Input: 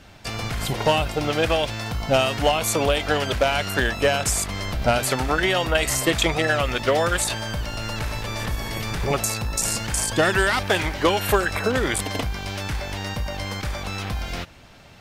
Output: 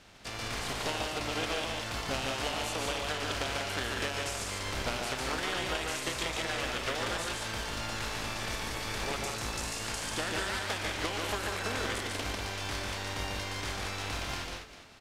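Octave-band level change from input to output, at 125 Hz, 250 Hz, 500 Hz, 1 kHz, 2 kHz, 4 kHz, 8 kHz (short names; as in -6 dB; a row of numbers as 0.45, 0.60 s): -13.0, -12.5, -14.5, -10.5, -9.5, -7.5, -11.0 dB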